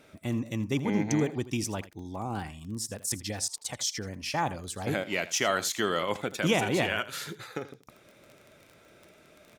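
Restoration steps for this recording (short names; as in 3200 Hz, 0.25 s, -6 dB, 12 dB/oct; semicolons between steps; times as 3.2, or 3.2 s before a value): de-click; inverse comb 81 ms -16.5 dB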